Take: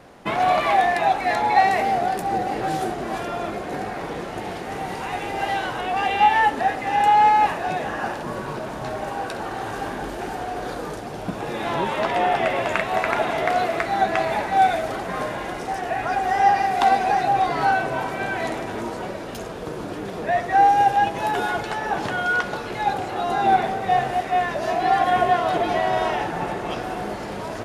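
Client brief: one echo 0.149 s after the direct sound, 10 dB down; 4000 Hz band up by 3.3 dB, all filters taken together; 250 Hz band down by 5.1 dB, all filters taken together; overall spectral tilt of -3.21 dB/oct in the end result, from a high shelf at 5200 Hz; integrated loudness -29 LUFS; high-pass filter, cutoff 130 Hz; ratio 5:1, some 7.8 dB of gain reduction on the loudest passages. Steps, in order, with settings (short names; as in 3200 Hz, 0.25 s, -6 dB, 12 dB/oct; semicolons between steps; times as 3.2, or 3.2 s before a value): HPF 130 Hz; bell 250 Hz -7 dB; bell 4000 Hz +3 dB; high shelf 5200 Hz +3.5 dB; compressor 5:1, threshold -21 dBFS; echo 0.149 s -10 dB; gain -3 dB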